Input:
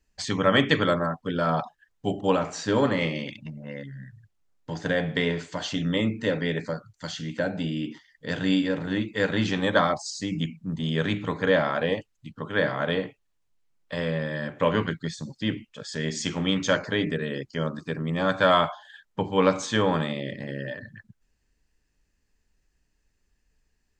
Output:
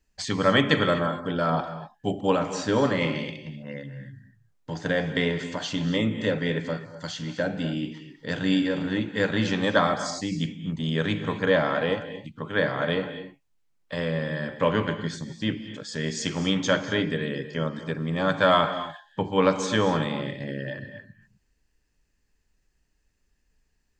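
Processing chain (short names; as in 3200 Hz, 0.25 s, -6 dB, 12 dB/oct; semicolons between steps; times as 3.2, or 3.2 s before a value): non-linear reverb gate 0.28 s rising, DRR 10.5 dB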